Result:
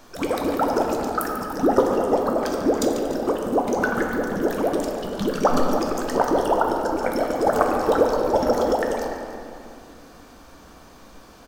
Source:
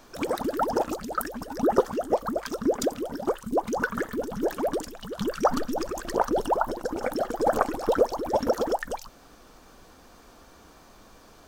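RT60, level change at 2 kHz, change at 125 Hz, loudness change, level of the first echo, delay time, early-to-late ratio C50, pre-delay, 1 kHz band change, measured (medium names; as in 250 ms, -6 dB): 2.4 s, +5.5 dB, +6.0 dB, +5.5 dB, -12.0 dB, 143 ms, 2.0 dB, 11 ms, +5.0 dB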